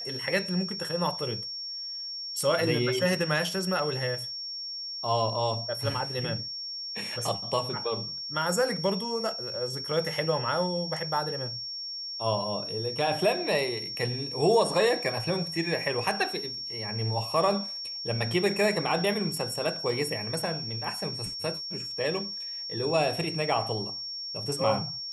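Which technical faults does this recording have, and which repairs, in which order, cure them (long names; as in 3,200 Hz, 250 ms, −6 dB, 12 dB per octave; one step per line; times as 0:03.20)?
whistle 5,500 Hz −34 dBFS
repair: notch filter 5,500 Hz, Q 30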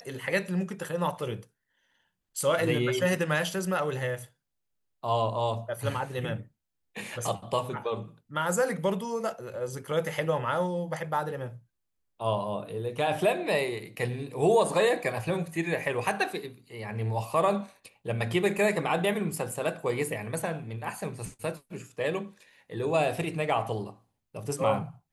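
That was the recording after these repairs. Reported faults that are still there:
none of them is left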